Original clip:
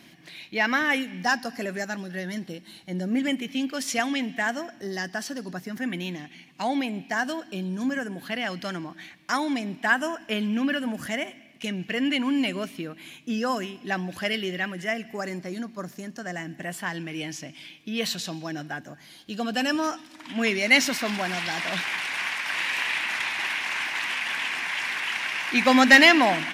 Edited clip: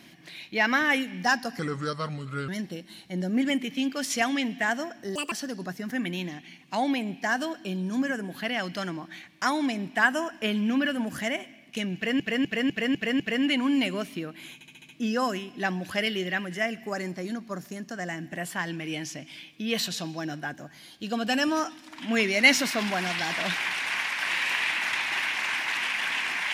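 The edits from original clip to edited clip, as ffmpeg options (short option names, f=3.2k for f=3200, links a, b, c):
-filter_complex "[0:a]asplit=15[a][b][c][d][e][f][g][h][i][j][k][l][m][n][o];[a]atrim=end=1.594[p];[b]atrim=start=1.59:end=2.26,asetpts=PTS-STARTPTS,asetrate=33075,aresample=44100[q];[c]atrim=start=2.256:end=4.934[r];[d]atrim=start=4.93:end=5.19,asetpts=PTS-STARTPTS,asetrate=69678,aresample=44100[s];[e]atrim=start=5.186:end=12.072[t];[f]atrim=start=11.818:end=12.072[u];[g]atrim=start=11.818:end=12.072[v];[h]atrim=start=11.818:end=12.072[w];[i]atrim=start=11.818:end=12.072[x];[j]atrim=start=11.818:end=13.232[y];[k]atrim=start=13.158:end=13.232[z];[l]atrim=start=13.158:end=13.232[aa];[m]atrim=start=13.158:end=13.232[ab];[n]atrim=start=13.158:end=13.232[ac];[o]atrim=start=13.158[ad];[p][q]acrossfade=d=0.004:c1=hsin:c2=hsin[ae];[ae][r]acrossfade=d=0.004:c1=hsin:c2=hsin[af];[af][s]acrossfade=d=0.004:c1=hsin:c2=hsin[ag];[ag][t]acrossfade=d=0.004:c1=hsin:c2=hsin[ah];[ah][u]acrossfade=d=0.004:c1=hsin:c2=hsin[ai];[ai][v]acrossfade=d=0.004:c1=hsin:c2=hsin[aj];[aj][w]acrossfade=d=0.004:c1=hsin:c2=hsin[ak];[ak][x]acrossfade=d=0.004:c1=hsin:c2=hsin[al];[al][y]acrossfade=d=0.004:c1=hsin:c2=hsin[am];[am][z]acrossfade=d=0.004:c1=hsin:c2=hsin[an];[an][aa]acrossfade=d=0.004:c1=hsin:c2=hsin[ao];[ao][ab]acrossfade=d=0.004:c1=hsin:c2=hsin[ap];[ap][ac]acrossfade=d=0.004:c1=hsin:c2=hsin[aq];[aq][ad]acrossfade=d=0.004:c1=hsin:c2=hsin"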